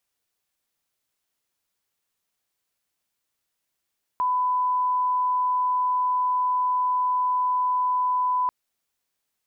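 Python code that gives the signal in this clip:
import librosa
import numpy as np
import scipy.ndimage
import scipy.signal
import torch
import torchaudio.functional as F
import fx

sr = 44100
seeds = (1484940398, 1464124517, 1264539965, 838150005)

y = fx.lineup_tone(sr, length_s=4.29, level_db=-20.0)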